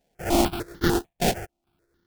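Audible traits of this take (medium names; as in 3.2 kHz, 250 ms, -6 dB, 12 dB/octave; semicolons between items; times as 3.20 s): a buzz of ramps at a fixed pitch in blocks of 128 samples; chopped level 1.2 Hz, depth 65%, duty 60%; aliases and images of a low sample rate 1.1 kHz, jitter 20%; notches that jump at a steady rate 6.7 Hz 330–2500 Hz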